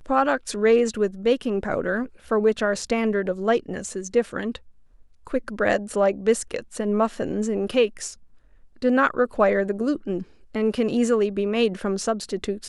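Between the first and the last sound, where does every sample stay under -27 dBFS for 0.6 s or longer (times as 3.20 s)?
4.56–5.27 s
8.09–8.82 s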